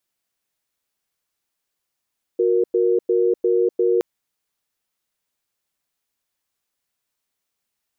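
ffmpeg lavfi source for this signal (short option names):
-f lavfi -i "aevalsrc='0.133*(sin(2*PI*365*t)+sin(2*PI*468*t))*clip(min(mod(t,0.35),0.25-mod(t,0.35))/0.005,0,1)':d=1.62:s=44100"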